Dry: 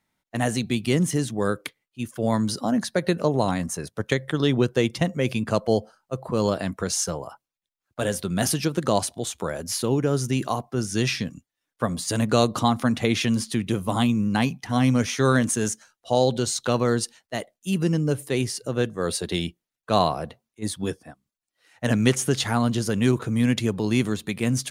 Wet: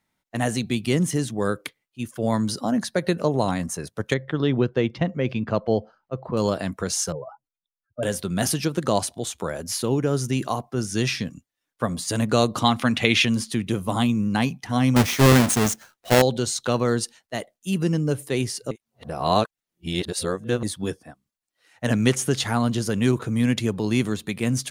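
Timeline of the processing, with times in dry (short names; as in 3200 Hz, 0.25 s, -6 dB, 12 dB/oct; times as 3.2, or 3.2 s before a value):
4.14–6.37 air absorption 230 m
7.12–8.03 spectral contrast raised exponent 2.8
12.62–13.25 bell 2700 Hz +10 dB 1.4 oct
14.96–16.22 half-waves squared off
18.71–20.63 reverse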